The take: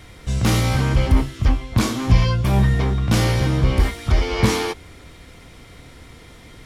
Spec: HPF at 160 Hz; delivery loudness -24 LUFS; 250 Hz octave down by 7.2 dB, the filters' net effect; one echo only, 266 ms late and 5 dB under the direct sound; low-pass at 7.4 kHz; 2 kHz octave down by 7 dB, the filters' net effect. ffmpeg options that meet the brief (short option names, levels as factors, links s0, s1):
-af "highpass=160,lowpass=7400,equalizer=f=250:t=o:g=-8,equalizer=f=2000:t=o:g=-8.5,aecho=1:1:266:0.562,volume=1.19"